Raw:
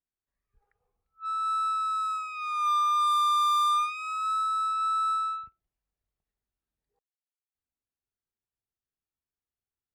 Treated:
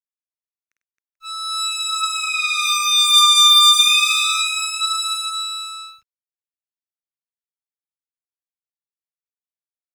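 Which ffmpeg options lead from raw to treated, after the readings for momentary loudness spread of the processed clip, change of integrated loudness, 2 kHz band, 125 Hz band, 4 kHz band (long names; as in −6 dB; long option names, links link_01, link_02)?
18 LU, +12.5 dB, +21.0 dB, can't be measured, +25.0 dB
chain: -filter_complex "[0:a]highshelf=frequency=7100:gain=-5,acrossover=split=1000[link_01][link_02];[link_02]aexciter=amount=7.5:drive=8.4:freq=2100[link_03];[link_01][link_03]amix=inputs=2:normalize=0,aeval=exprs='sgn(val(0))*max(abs(val(0))-0.00299,0)':channel_layout=same,aecho=1:1:51|98|268|438|548:0.708|0.355|0.596|0.119|0.501"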